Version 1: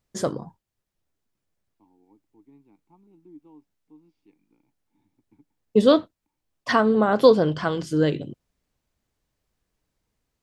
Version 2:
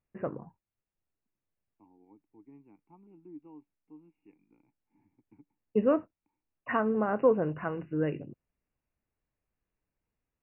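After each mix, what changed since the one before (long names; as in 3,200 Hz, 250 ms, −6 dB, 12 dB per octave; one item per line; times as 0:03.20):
first voice −9.0 dB
master: add linear-phase brick-wall low-pass 2,900 Hz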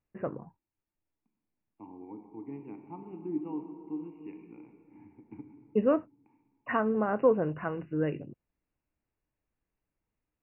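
second voice +11.0 dB
reverb: on, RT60 2.6 s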